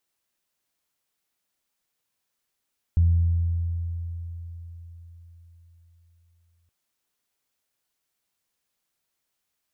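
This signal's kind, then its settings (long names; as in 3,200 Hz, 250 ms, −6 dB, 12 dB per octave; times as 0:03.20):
harmonic partials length 3.72 s, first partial 84.9 Hz, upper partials −18.5 dB, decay 4.46 s, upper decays 2.34 s, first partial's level −14.5 dB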